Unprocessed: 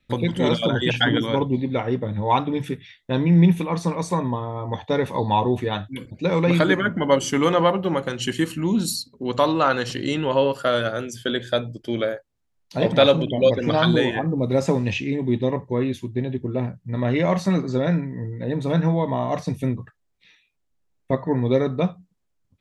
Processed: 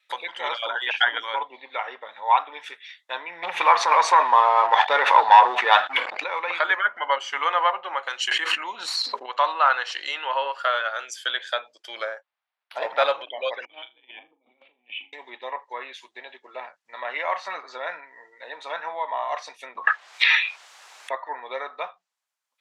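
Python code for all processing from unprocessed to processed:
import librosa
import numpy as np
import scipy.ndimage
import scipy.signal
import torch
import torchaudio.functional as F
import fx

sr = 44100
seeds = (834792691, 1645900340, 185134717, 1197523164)

y = fx.chain(x, sr, fx.leveller(passes=2),
    fx.env_flatten(amount_pct=70), at=(3.43, 6.24))
y = fx.chain(y, sr, fx.median_filter(points=3),
    fx.high_shelf(hz=10000.0, db=8.0),
    fx.env_flatten(amount_pct=100), at=(8.31, 9.26))
y = fx.chain(y, sr, fx.peak_eq(hz=220.0, db=4.5, octaves=3.0),
    fx.resample_linear(factor=6), at=(11.96, 13.12))
y = fx.chain(y, sr, fx.formant_cascade(vowel='i'),
    fx.over_compress(threshold_db=-34.0, ratio=-0.5),
    fx.room_flutter(wall_m=6.8, rt60_s=0.22), at=(13.65, 15.13))
y = fx.chain(y, sr, fx.high_shelf(hz=8100.0, db=-7.5),
    fx.env_flatten(amount_pct=100), at=(19.75, 21.14))
y = fx.env_lowpass_down(y, sr, base_hz=2500.0, full_db=-18.0)
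y = scipy.signal.sosfilt(scipy.signal.butter(4, 820.0, 'highpass', fs=sr, output='sos'), y)
y = F.gain(torch.from_numpy(y), 3.5).numpy()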